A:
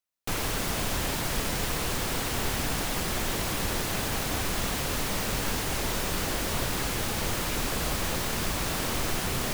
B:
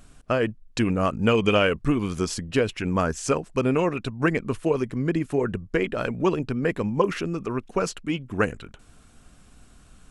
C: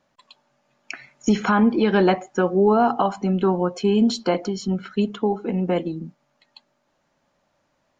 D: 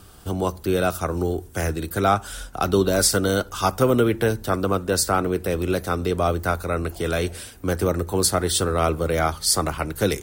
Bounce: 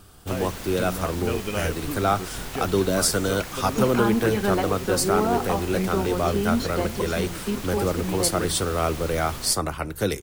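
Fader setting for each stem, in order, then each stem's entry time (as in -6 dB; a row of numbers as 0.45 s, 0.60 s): -7.0 dB, -10.0 dB, -6.5 dB, -3.0 dB; 0.00 s, 0.00 s, 2.50 s, 0.00 s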